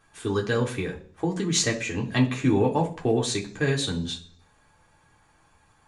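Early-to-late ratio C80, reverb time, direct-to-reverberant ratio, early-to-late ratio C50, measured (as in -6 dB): 18.0 dB, 0.45 s, -1.5 dB, 13.0 dB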